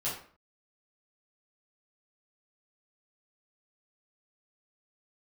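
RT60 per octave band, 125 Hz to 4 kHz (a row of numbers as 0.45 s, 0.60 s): 0.50 s, 0.50 s, 0.45 s, 0.45 s, 0.45 s, 0.35 s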